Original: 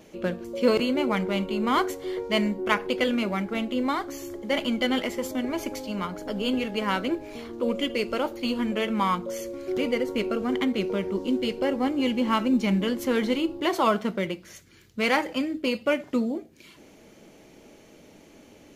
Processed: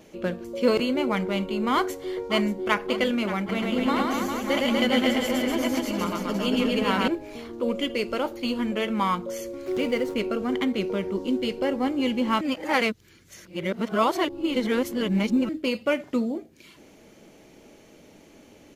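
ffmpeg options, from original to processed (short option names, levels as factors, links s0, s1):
-filter_complex "[0:a]asplit=2[s0][s1];[s1]afade=t=in:st=1.72:d=0.01,afade=t=out:st=2.85:d=0.01,aecho=0:1:580|1160|1740|2320|2900|3480|4060:0.237137|0.142282|0.0853695|0.0512217|0.030733|0.0184398|0.0110639[s2];[s0][s2]amix=inputs=2:normalize=0,asettb=1/sr,asplit=3[s3][s4][s5];[s3]atrim=end=3.384[s6];[s4]atrim=start=3.38:end=7.08,asetpts=PTS-STARTPTS,afade=t=in:d=0.004:c=qsin,afade=t=out:st=3.696:d=0.004:c=qsin,aecho=1:1:110|242|400.4|590.5|818.6:0.794|0.631|0.501|0.398|0.316,atrim=end_sample=163170[s7];[s5]atrim=start=7.076[s8];[s6][s7]acrossfade=d=0.004:c1=hsin:c2=qsin[s9];[s9][s8]acrossfade=d=0.004:c1=qsin:c2=hsin,asettb=1/sr,asplit=3[s10][s11][s12];[s10]atrim=end=9.664[s13];[s11]atrim=start=9.66:end=10.14,asetpts=PTS-STARTPTS,afade=t=in:d=0.004:c=qsin,afade=t=out:st=0.476:d=0.004:c=qsin,aeval=exprs='val(0)+0.5*0.00891*sgn(val(0))':c=same[s14];[s12]atrim=start=10.136[s15];[s13][s14]acrossfade=d=0.004:c1=hsin:c2=qsin[s16];[s16][s15]acrossfade=d=0.004:c1=qsin:c2=hsin,asplit=3[s17][s18][s19];[s17]atrim=end=12.412[s20];[s18]atrim=start=12.408:end=15.492,asetpts=PTS-STARTPTS,areverse[s21];[s19]atrim=start=15.488[s22];[s20][s21]acrossfade=d=0.004:c1=hsin:c2=hsin[s23];[s23][s22]acrossfade=d=0.004:c1=hsin:c2=hsin"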